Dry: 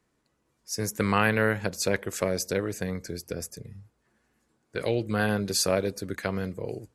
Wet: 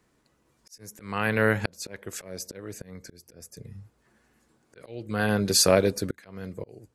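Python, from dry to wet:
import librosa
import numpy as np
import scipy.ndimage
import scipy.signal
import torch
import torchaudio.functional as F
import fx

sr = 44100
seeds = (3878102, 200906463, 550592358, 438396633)

y = fx.auto_swell(x, sr, attack_ms=690.0)
y = y * librosa.db_to_amplitude(5.5)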